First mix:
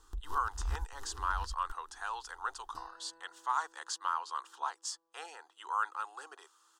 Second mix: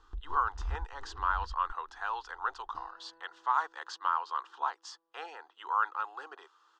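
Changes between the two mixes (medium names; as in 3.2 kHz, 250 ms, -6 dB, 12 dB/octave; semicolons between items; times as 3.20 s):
speech +5.0 dB; first sound: add treble shelf 4.6 kHz -9.5 dB; master: add distance through air 220 m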